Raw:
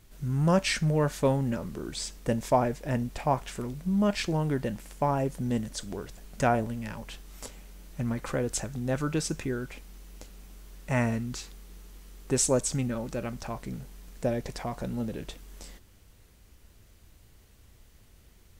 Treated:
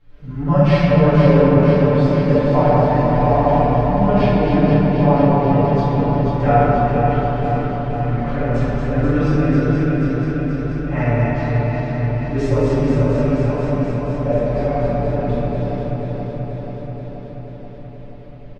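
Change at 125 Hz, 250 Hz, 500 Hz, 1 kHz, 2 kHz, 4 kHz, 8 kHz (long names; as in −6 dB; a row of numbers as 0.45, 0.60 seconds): +16.0 dB, +14.0 dB, +14.5 dB, +14.0 dB, +9.5 dB, can't be measured, below −15 dB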